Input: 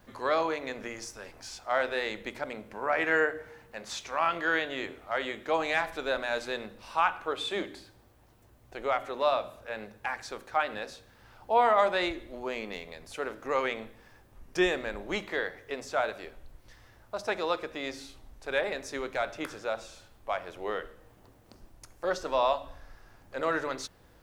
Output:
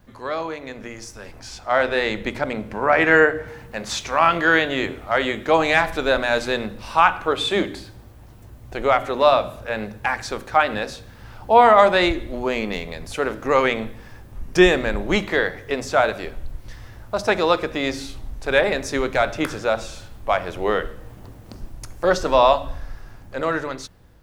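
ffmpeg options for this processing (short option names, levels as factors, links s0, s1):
-filter_complex "[0:a]asettb=1/sr,asplit=3[s0][s1][s2];[s0]atrim=end=1.394[s3];[s1]atrim=start=1.39:end=3.48,asetpts=PTS-STARTPTS,afade=t=in:d=0.004:c=qsin,afade=t=out:st=2.086:d=0.004:c=qsin,highshelf=f=7500:g=-6[s4];[s2]atrim=start=3.476[s5];[s3][s4]acrossfade=d=0.004:c1=hsin:c2=qsin[s6];[s6][s5]acrossfade=d=0.004:c1=qsin:c2=hsin,dynaudnorm=f=340:g=9:m=4.22,bass=f=250:g=8,treble=f=4000:g=0"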